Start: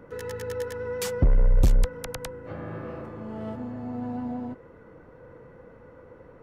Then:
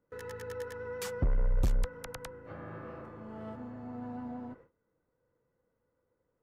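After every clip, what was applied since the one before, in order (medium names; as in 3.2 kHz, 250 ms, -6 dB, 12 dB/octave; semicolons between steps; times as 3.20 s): gate with hold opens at -36 dBFS; dynamic bell 1.3 kHz, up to +5 dB, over -49 dBFS, Q 1.1; trim -9 dB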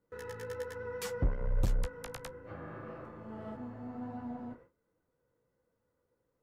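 flange 1.2 Hz, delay 9.1 ms, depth 9.5 ms, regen -29%; trim +3 dB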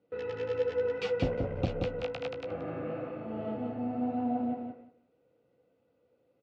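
cabinet simulation 110–4200 Hz, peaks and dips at 280 Hz +5 dB, 500 Hz +4 dB, 720 Hz +8 dB, 1 kHz -9 dB, 1.7 kHz -8 dB, 2.6 kHz +8 dB; feedback delay 179 ms, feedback 17%, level -4.5 dB; trim +4.5 dB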